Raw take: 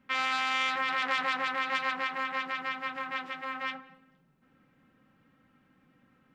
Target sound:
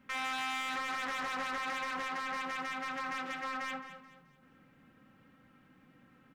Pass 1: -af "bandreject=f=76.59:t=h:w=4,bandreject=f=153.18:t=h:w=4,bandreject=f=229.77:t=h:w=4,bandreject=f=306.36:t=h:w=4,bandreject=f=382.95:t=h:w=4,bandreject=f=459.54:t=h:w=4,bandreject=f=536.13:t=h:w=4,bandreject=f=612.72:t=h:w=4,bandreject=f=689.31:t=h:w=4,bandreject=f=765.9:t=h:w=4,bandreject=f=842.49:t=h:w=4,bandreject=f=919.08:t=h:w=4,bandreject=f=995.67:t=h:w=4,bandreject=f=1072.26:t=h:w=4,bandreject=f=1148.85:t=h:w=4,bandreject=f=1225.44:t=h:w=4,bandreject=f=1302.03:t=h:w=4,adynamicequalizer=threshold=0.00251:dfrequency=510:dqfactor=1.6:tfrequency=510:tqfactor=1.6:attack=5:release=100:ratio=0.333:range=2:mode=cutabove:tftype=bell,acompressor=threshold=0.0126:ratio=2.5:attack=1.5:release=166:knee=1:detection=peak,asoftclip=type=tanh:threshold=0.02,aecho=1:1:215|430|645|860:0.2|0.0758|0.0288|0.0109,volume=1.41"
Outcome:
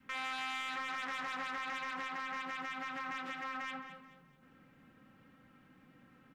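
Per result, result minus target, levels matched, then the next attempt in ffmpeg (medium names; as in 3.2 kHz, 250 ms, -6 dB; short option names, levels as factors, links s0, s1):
compression: peak gain reduction +5 dB; 500 Hz band -3.0 dB
-af "bandreject=f=76.59:t=h:w=4,bandreject=f=153.18:t=h:w=4,bandreject=f=229.77:t=h:w=4,bandreject=f=306.36:t=h:w=4,bandreject=f=382.95:t=h:w=4,bandreject=f=459.54:t=h:w=4,bandreject=f=536.13:t=h:w=4,bandreject=f=612.72:t=h:w=4,bandreject=f=689.31:t=h:w=4,bandreject=f=765.9:t=h:w=4,bandreject=f=842.49:t=h:w=4,bandreject=f=919.08:t=h:w=4,bandreject=f=995.67:t=h:w=4,bandreject=f=1072.26:t=h:w=4,bandreject=f=1148.85:t=h:w=4,bandreject=f=1225.44:t=h:w=4,bandreject=f=1302.03:t=h:w=4,adynamicequalizer=threshold=0.00251:dfrequency=510:dqfactor=1.6:tfrequency=510:tqfactor=1.6:attack=5:release=100:ratio=0.333:range=2:mode=cutabove:tftype=bell,acompressor=threshold=0.0355:ratio=2.5:attack=1.5:release=166:knee=1:detection=peak,asoftclip=type=tanh:threshold=0.02,aecho=1:1:215|430|645|860:0.2|0.0758|0.0288|0.0109,volume=1.41"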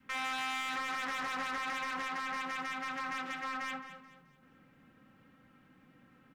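500 Hz band -3.0 dB
-af "bandreject=f=76.59:t=h:w=4,bandreject=f=153.18:t=h:w=4,bandreject=f=229.77:t=h:w=4,bandreject=f=306.36:t=h:w=4,bandreject=f=382.95:t=h:w=4,bandreject=f=459.54:t=h:w=4,bandreject=f=536.13:t=h:w=4,bandreject=f=612.72:t=h:w=4,bandreject=f=689.31:t=h:w=4,bandreject=f=765.9:t=h:w=4,bandreject=f=842.49:t=h:w=4,bandreject=f=919.08:t=h:w=4,bandreject=f=995.67:t=h:w=4,bandreject=f=1072.26:t=h:w=4,bandreject=f=1148.85:t=h:w=4,bandreject=f=1225.44:t=h:w=4,bandreject=f=1302.03:t=h:w=4,acompressor=threshold=0.0355:ratio=2.5:attack=1.5:release=166:knee=1:detection=peak,asoftclip=type=tanh:threshold=0.02,aecho=1:1:215|430|645|860:0.2|0.0758|0.0288|0.0109,volume=1.41"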